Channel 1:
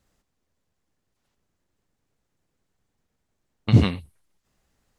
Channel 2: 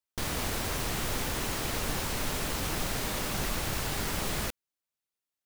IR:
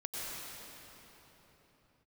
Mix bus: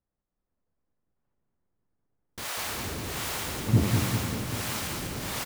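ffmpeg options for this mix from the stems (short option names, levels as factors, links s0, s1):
-filter_complex "[0:a]lowpass=1400,volume=0.126,asplit=3[s0][s1][s2];[s1]volume=0.376[s3];[s2]volume=0.668[s4];[1:a]highpass=65,asoftclip=type=tanh:threshold=0.0299,acrossover=split=530[s5][s6];[s5]aeval=exprs='val(0)*(1-1/2+1/2*cos(2*PI*1.4*n/s))':c=same[s7];[s6]aeval=exprs='val(0)*(1-1/2-1/2*cos(2*PI*1.4*n/s))':c=same[s8];[s7][s8]amix=inputs=2:normalize=0,adelay=2200,volume=0.562,asplit=2[s9][s10];[s10]volume=0.708[s11];[2:a]atrim=start_sample=2205[s12];[s3][s12]afir=irnorm=-1:irlink=0[s13];[s4][s11]amix=inputs=2:normalize=0,aecho=0:1:197|394|591|788|985|1182|1379|1576|1773:1|0.58|0.336|0.195|0.113|0.0656|0.0381|0.0221|0.0128[s14];[s0][s9][s13][s14]amix=inputs=4:normalize=0,dynaudnorm=f=130:g=7:m=2.99"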